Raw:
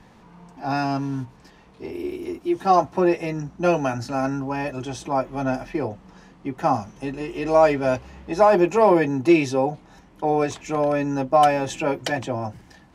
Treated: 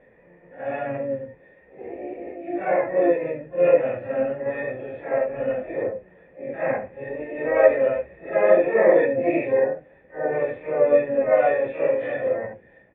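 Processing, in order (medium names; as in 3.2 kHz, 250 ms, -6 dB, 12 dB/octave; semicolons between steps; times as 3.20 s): phase randomisation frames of 200 ms; harmony voices -3 st -9 dB, +12 st -6 dB; cascade formant filter e; trim +8.5 dB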